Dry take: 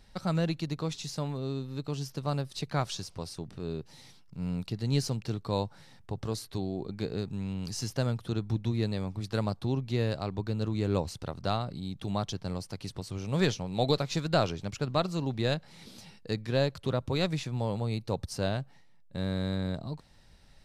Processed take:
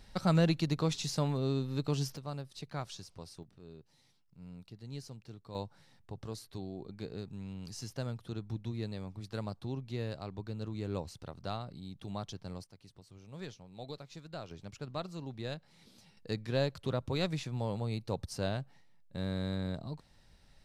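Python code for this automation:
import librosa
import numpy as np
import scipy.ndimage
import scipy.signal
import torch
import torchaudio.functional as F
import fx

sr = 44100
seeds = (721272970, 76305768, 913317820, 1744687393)

y = fx.gain(x, sr, db=fx.steps((0.0, 2.0), (2.17, -9.5), (3.43, -16.0), (5.55, -8.5), (12.64, -18.0), (14.51, -11.0), (16.17, -4.0)))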